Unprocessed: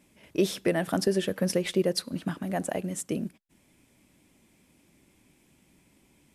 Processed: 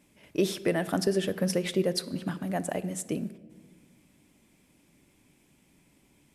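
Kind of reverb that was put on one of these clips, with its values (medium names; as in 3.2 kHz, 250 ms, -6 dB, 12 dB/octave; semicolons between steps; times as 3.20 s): simulated room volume 1500 m³, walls mixed, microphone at 0.35 m; trim -1 dB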